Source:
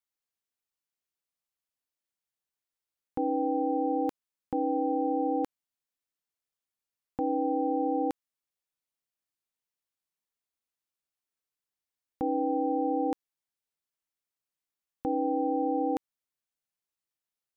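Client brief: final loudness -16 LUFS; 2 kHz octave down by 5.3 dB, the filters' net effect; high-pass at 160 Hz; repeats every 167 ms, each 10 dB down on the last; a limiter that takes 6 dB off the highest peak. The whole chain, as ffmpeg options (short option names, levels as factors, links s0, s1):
-af "highpass=160,equalizer=f=2000:t=o:g=-7,alimiter=level_in=1.19:limit=0.0631:level=0:latency=1,volume=0.841,aecho=1:1:167|334|501|668:0.316|0.101|0.0324|0.0104,volume=7.94"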